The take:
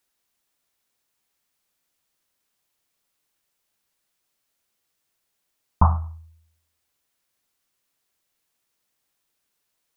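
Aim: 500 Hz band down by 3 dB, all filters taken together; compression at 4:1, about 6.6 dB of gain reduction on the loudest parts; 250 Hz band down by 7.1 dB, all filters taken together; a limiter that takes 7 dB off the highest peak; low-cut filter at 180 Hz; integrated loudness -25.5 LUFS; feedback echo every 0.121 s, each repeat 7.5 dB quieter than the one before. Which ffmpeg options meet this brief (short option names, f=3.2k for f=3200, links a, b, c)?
-af "highpass=180,equalizer=f=250:t=o:g=-6.5,equalizer=f=500:t=o:g=-3.5,acompressor=threshold=-25dB:ratio=4,alimiter=limit=-20.5dB:level=0:latency=1,aecho=1:1:121|242|363|484|605:0.422|0.177|0.0744|0.0312|0.0131,volume=14dB"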